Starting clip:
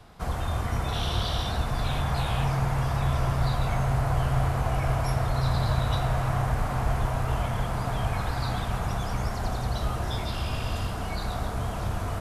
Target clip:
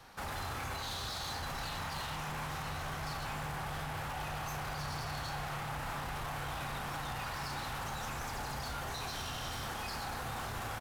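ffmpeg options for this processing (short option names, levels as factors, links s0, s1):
-filter_complex "[0:a]lowshelf=f=350:g=-12,alimiter=level_in=2:limit=0.0631:level=0:latency=1:release=25,volume=0.501,aeval=exprs='0.0188*(abs(mod(val(0)/0.0188+3,4)-2)-1)':c=same,asetrate=49833,aresample=44100,asplit=2[s0][s1];[s1]adelay=35,volume=0.299[s2];[s0][s2]amix=inputs=2:normalize=0"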